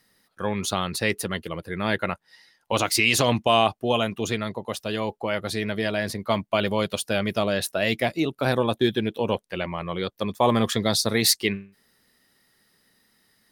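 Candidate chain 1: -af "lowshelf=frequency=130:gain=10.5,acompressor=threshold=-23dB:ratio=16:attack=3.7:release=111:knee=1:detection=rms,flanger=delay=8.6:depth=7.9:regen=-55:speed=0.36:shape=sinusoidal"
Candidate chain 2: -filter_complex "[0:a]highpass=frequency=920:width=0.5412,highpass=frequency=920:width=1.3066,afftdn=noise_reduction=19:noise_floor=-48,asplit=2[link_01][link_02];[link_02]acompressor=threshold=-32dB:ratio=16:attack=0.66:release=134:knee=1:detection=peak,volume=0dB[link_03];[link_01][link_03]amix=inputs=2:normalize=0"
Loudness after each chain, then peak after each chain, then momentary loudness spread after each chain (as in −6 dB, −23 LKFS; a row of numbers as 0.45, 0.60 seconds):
−34.5, −26.5 LKFS; −18.0, −6.0 dBFS; 5, 12 LU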